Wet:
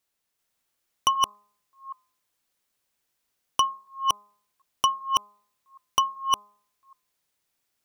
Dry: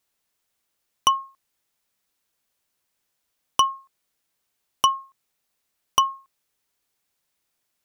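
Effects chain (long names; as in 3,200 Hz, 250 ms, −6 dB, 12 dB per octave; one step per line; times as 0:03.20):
delay that plays each chunk backwards 385 ms, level −1 dB
hum removal 206 Hz, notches 6
level −3.5 dB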